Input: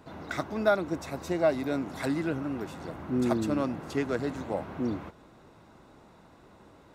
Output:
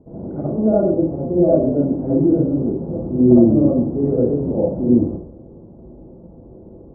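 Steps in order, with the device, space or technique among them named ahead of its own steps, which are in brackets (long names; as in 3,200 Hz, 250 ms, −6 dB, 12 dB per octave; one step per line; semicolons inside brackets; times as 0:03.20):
next room (low-pass filter 530 Hz 24 dB per octave; convolution reverb RT60 0.55 s, pre-delay 51 ms, DRR −8 dB)
level +6.5 dB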